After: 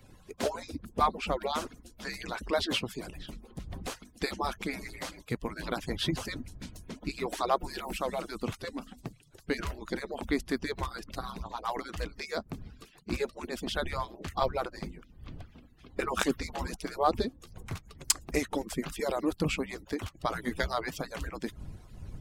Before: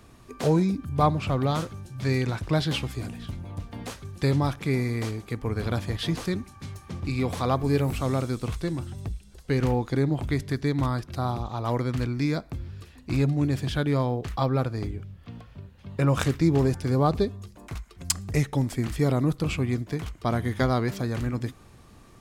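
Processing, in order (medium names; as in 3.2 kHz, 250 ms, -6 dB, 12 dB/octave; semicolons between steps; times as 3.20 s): harmonic-percussive separation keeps percussive; wind noise 87 Hz -49 dBFS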